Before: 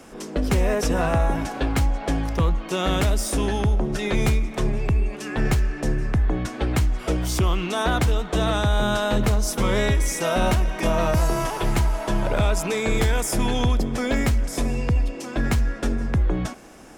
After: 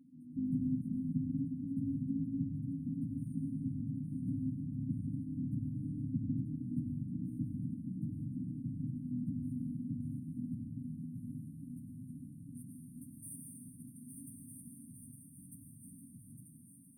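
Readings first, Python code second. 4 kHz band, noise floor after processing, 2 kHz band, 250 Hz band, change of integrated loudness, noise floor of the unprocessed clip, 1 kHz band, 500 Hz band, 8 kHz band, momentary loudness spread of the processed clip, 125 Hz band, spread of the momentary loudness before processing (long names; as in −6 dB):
below −40 dB, −57 dBFS, below −40 dB, −11.0 dB, −16.5 dB, −36 dBFS, below −40 dB, below −40 dB, −23.0 dB, 16 LU, −16.0 dB, 4 LU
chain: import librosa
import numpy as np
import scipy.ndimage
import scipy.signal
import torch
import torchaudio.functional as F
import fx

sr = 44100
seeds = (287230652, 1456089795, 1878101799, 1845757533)

y = fx.lower_of_two(x, sr, delay_ms=7.1)
y = scipy.signal.sosfilt(scipy.signal.butter(2, 100.0, 'highpass', fs=sr, output='sos'), y)
y = fx.high_shelf(y, sr, hz=4400.0, db=9.5)
y = fx.filter_sweep_bandpass(y, sr, from_hz=410.0, to_hz=3600.0, start_s=10.34, end_s=13.43, q=2.4)
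y = fx.high_shelf(y, sr, hz=2000.0, db=-11.5)
y = fx.echo_thinned(y, sr, ms=857, feedback_pct=68, hz=150.0, wet_db=-7)
y = fx.rev_plate(y, sr, seeds[0], rt60_s=1.9, hf_ratio=0.75, predelay_ms=80, drr_db=1.5)
y = fx.rider(y, sr, range_db=4, speed_s=2.0)
y = fx.brickwall_bandstop(y, sr, low_hz=280.0, high_hz=8600.0)
y = F.gain(torch.from_numpy(y), 2.5).numpy()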